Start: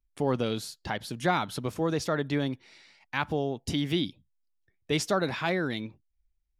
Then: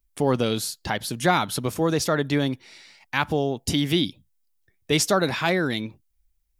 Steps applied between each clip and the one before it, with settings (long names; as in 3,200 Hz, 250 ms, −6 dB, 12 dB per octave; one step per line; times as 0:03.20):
high-shelf EQ 6,900 Hz +10.5 dB
level +5.5 dB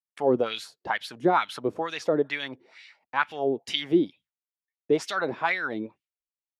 downward expander −48 dBFS
LFO wah 2.2 Hz 340–2,800 Hz, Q 2.3
level +4.5 dB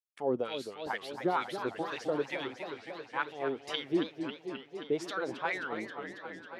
feedback echo with a swinging delay time 269 ms, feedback 77%, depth 217 cents, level −9 dB
level −8.5 dB